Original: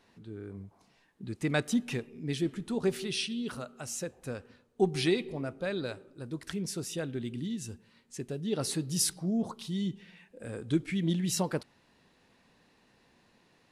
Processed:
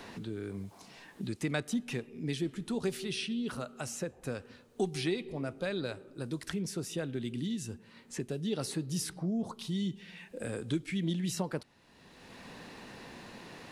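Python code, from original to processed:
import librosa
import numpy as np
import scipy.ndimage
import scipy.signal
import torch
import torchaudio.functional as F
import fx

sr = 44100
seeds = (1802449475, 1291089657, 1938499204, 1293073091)

y = fx.band_squash(x, sr, depth_pct=70)
y = F.gain(torch.from_numpy(y), -2.0).numpy()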